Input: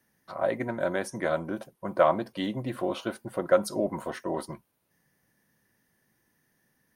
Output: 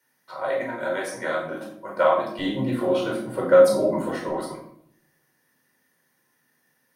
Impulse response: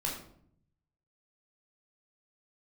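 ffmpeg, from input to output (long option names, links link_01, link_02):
-filter_complex "[0:a]asetnsamples=nb_out_samples=441:pad=0,asendcmd='2.39 highpass f 170;4.29 highpass f 640',highpass=frequency=820:poles=1[link_01];[1:a]atrim=start_sample=2205,asetrate=41454,aresample=44100[link_02];[link_01][link_02]afir=irnorm=-1:irlink=0,volume=1.5dB"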